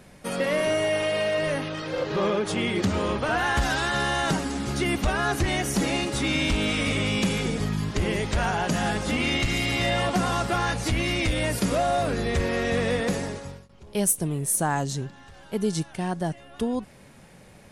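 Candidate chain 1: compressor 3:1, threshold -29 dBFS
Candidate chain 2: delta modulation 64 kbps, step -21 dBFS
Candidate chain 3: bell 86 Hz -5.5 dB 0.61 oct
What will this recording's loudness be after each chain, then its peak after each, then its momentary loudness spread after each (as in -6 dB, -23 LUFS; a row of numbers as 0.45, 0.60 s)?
-31.0, -24.0, -25.5 LUFS; -16.0, -12.5, -8.0 dBFS; 6, 4, 6 LU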